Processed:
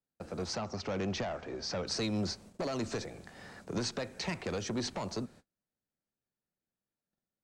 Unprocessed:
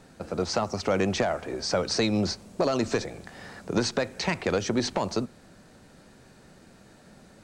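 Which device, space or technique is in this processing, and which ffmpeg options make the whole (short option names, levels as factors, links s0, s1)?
one-band saturation: -filter_complex "[0:a]agate=range=0.0158:threshold=0.00501:ratio=16:detection=peak,acrossover=split=210|3600[s0][s1][s2];[s1]asoftclip=type=tanh:threshold=0.0531[s3];[s0][s3][s2]amix=inputs=3:normalize=0,asettb=1/sr,asplit=3[s4][s5][s6];[s4]atrim=end=0.554[s7];[s5]atrim=start=0.55:end=1.87,asetpts=PTS-STARTPTS,afade=t=in:d=0.004:c=qsin,afade=t=out:st=1.316:d=0.004:c=qsin,lowpass=f=6200:w=0.5412,lowpass=f=6200:w=1.3066[s8];[s6]atrim=start=1.866[s9];[s7][s8]acrossfade=d=0.004:c1=hsin:c2=qsin[s10];[s10][s9]acrossfade=d=0.004:c1=qsin:c2=hsin,volume=0.473"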